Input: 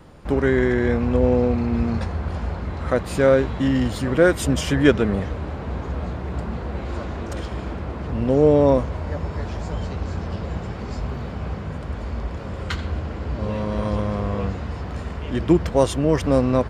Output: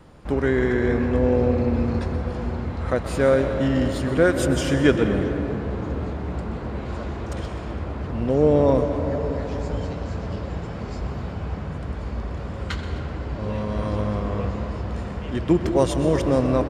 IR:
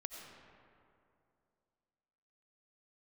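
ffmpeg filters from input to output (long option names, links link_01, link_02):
-filter_complex "[0:a]asplit=5[link_01][link_02][link_03][link_04][link_05];[link_02]adelay=127,afreqshift=41,volume=-14.5dB[link_06];[link_03]adelay=254,afreqshift=82,volume=-21.1dB[link_07];[link_04]adelay=381,afreqshift=123,volume=-27.6dB[link_08];[link_05]adelay=508,afreqshift=164,volume=-34.2dB[link_09];[link_01][link_06][link_07][link_08][link_09]amix=inputs=5:normalize=0,asplit=2[link_10][link_11];[1:a]atrim=start_sample=2205,asetrate=23373,aresample=44100[link_12];[link_11][link_12]afir=irnorm=-1:irlink=0,volume=0.5dB[link_13];[link_10][link_13]amix=inputs=2:normalize=0,volume=-8dB"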